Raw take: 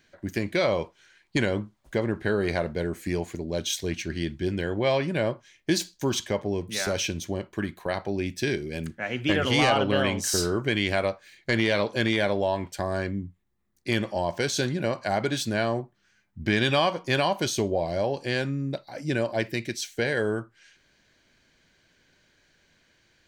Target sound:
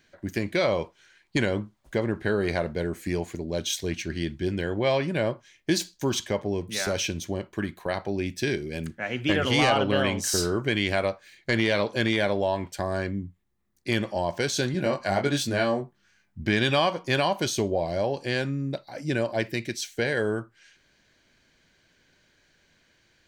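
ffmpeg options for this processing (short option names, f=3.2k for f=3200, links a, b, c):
-filter_complex "[0:a]asettb=1/sr,asplit=3[a][b][c];[a]atrim=end=14.724[d];[b]atrim=start=14.72:end=16.41,asetpts=PTS-STARTPTS,afade=t=in:d=0.004:c=qsin,afade=t=out:st=1.686:d=0.004:c=qsin,asplit=2[e][f];[f]adelay=21,volume=-4dB[g];[e][g]amix=inputs=2:normalize=0,atrim=end_sample=74529[h];[c]atrim=start=16.406[i];[d][h]acrossfade=d=0.004:c1=hsin:c2=qsin[j];[j][i]acrossfade=d=0.004:c1=qsin:c2=hsin"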